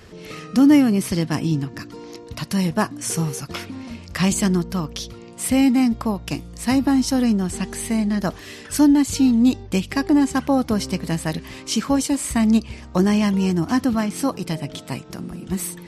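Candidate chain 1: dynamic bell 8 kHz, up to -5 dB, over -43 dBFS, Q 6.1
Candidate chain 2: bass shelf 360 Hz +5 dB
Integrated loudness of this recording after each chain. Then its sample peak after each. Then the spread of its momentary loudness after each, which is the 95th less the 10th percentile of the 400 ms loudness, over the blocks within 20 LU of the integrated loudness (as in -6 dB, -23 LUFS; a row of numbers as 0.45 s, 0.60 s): -20.5 LUFS, -17.5 LUFS; -5.0 dBFS, -2.5 dBFS; 16 LU, 17 LU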